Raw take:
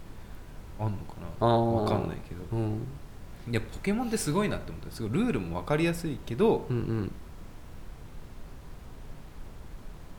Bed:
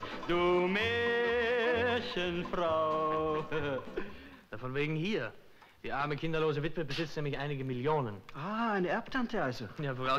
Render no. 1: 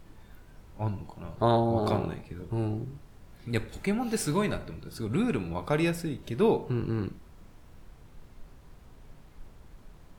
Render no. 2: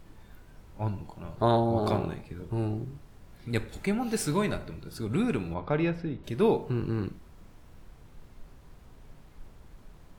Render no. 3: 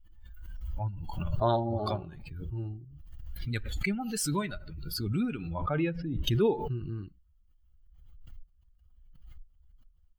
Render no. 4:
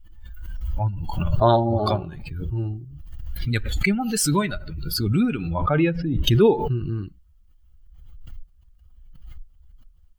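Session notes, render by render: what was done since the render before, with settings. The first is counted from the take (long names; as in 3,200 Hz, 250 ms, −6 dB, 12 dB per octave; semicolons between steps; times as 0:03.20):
noise reduction from a noise print 7 dB
0:05.54–0:06.24: high-frequency loss of the air 280 metres
spectral dynamics exaggerated over time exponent 2; background raised ahead of every attack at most 30 dB per second
level +9.5 dB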